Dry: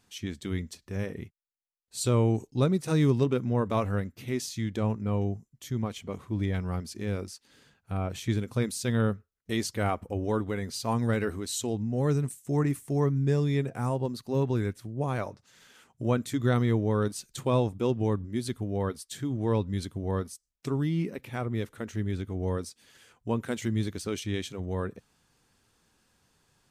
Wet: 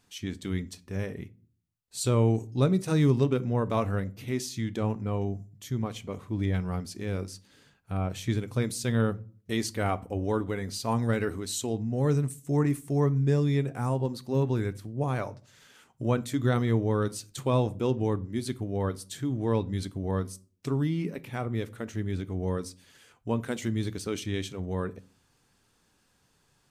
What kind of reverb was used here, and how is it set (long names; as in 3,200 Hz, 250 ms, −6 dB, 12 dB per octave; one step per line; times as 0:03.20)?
rectangular room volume 300 cubic metres, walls furnished, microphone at 0.32 metres